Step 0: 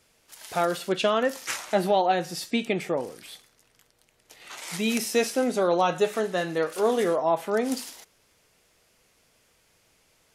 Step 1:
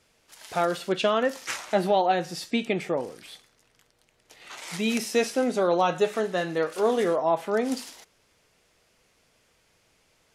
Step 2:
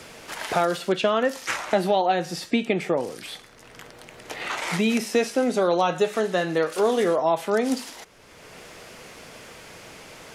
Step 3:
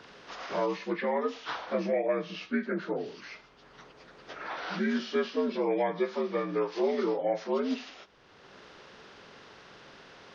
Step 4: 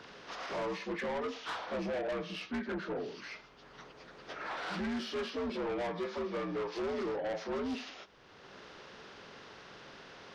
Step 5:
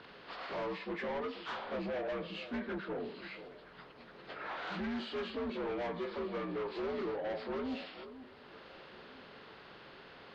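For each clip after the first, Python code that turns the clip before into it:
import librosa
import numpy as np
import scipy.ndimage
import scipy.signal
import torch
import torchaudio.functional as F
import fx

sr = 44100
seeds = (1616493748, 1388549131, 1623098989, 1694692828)

y1 = fx.high_shelf(x, sr, hz=11000.0, db=-11.0)
y2 = fx.band_squash(y1, sr, depth_pct=70)
y2 = y2 * librosa.db_to_amplitude(2.5)
y3 = fx.partial_stretch(y2, sr, pct=81)
y3 = y3 * librosa.db_to_amplitude(-6.0)
y4 = 10.0 ** (-32.5 / 20.0) * np.tanh(y3 / 10.0 ** (-32.5 / 20.0))
y5 = fx.freq_compress(y4, sr, knee_hz=3300.0, ratio=1.5)
y5 = fx.echo_alternate(y5, sr, ms=488, hz=1200.0, feedback_pct=58, wet_db=-13.0)
y5 = y5 * librosa.db_to_amplitude(-2.0)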